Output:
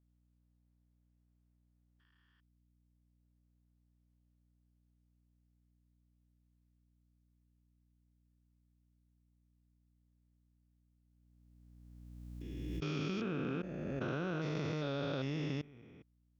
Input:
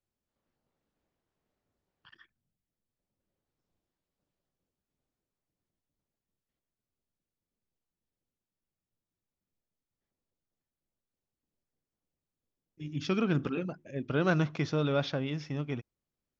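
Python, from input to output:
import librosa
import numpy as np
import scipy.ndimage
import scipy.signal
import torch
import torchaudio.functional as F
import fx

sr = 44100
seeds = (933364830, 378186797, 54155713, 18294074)

y = fx.spec_steps(x, sr, hold_ms=400)
y = fx.low_shelf(y, sr, hz=190.0, db=-5.0)
y = fx.level_steps(y, sr, step_db=20)
y = fx.add_hum(y, sr, base_hz=60, snr_db=28)
y = fx.pre_swell(y, sr, db_per_s=20.0)
y = y * librosa.db_to_amplitude(2.5)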